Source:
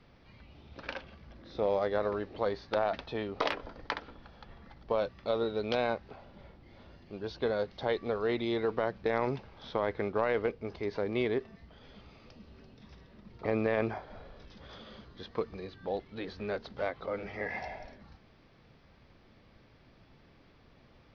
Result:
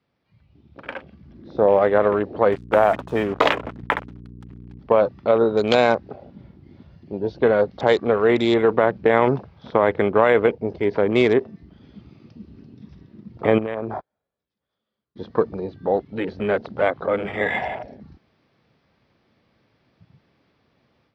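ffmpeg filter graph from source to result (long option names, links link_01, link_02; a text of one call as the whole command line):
ffmpeg -i in.wav -filter_complex "[0:a]asettb=1/sr,asplit=3[link_01][link_02][link_03];[link_01]atrim=end=2.524[link_04];[link_02]atrim=start=2.52:end=4.79,asetpts=PTS-STARTPTS,afade=type=in:duration=0.004:curve=qsin,afade=type=out:start_time=2.266:duration=0.004:curve=qsin,lowpass=frequency=3700:width=0.5412,lowpass=frequency=3700:width=1.3066,acrusher=bits=6:mix=0:aa=0.5,aeval=exprs='val(0)+0.00398*(sin(2*PI*60*n/s)+sin(2*PI*2*60*n/s)/2+sin(2*PI*3*60*n/s)/3+sin(2*PI*4*60*n/s)/4+sin(2*PI*5*60*n/s)/5)':channel_layout=same[link_05];[link_03]atrim=start=4.786[link_06];[link_04][link_05]acrossfade=duration=0.004:curve1=hsin:curve2=qsin[link_07];[link_07][link_06]acrossfade=duration=0.004:curve1=qsin:curve2=hsin,asettb=1/sr,asplit=3[link_08][link_09][link_10];[link_08]atrim=end=13.584[link_11];[link_09]atrim=start=13.58:end=15.16,asetpts=PTS-STARTPTS,afade=type=in:duration=0.004:curve=qsin,afade=type=out:start_time=1.576:duration=0.004:curve=qsin,agate=range=-30dB:threshold=-42dB:ratio=16:release=100:detection=peak,acompressor=threshold=-36dB:ratio=8:attack=3.2:release=140:knee=1:detection=peak[link_12];[link_10]atrim=start=15.156[link_13];[link_11][link_12]acrossfade=duration=0.004:curve1=hsin:curve2=qsin[link_14];[link_14][link_13]acrossfade=duration=0.004:curve1=qsin:curve2=hsin,highpass=100,afwtdn=0.00562,dynaudnorm=framelen=780:gausssize=3:maxgain=10dB,volume=4dB" out.wav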